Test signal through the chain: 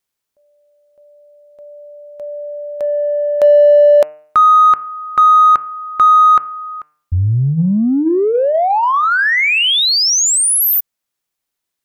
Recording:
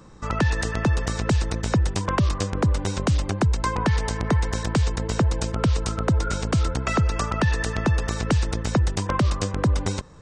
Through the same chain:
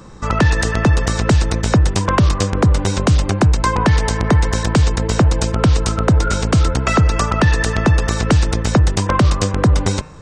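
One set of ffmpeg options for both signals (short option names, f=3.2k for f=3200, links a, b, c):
-filter_complex "[0:a]bandreject=f=151.5:t=h:w=4,bandreject=f=303:t=h:w=4,bandreject=f=454.5:t=h:w=4,bandreject=f=606:t=h:w=4,bandreject=f=757.5:t=h:w=4,bandreject=f=909:t=h:w=4,bandreject=f=1.0605k:t=h:w=4,bandreject=f=1.212k:t=h:w=4,bandreject=f=1.3635k:t=h:w=4,bandreject=f=1.515k:t=h:w=4,bandreject=f=1.6665k:t=h:w=4,bandreject=f=1.818k:t=h:w=4,bandreject=f=1.9695k:t=h:w=4,bandreject=f=2.121k:t=h:w=4,bandreject=f=2.2725k:t=h:w=4,bandreject=f=2.424k:t=h:w=4,bandreject=f=2.5755k:t=h:w=4,bandreject=f=2.727k:t=h:w=4,bandreject=f=2.8785k:t=h:w=4,asplit=2[a][b];[b]asoftclip=type=tanh:threshold=-23.5dB,volume=-11.5dB[c];[a][c]amix=inputs=2:normalize=0,volume=7dB"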